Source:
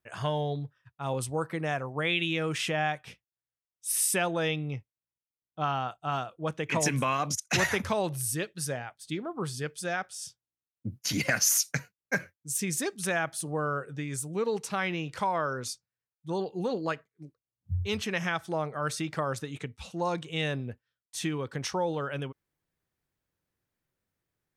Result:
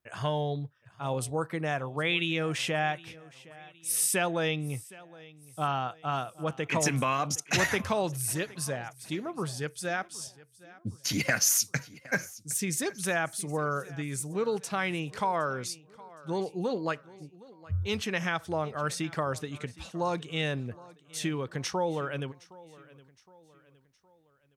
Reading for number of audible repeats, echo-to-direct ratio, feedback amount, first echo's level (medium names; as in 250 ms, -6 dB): 2, -20.0 dB, 44%, -21.0 dB